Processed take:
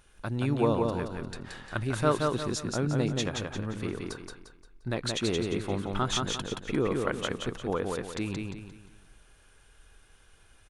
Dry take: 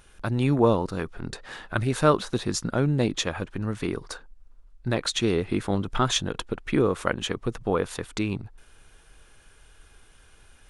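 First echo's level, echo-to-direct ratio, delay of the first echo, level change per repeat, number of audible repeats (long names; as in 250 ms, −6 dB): −3.5 dB, −3.0 dB, 175 ms, −8.5 dB, 4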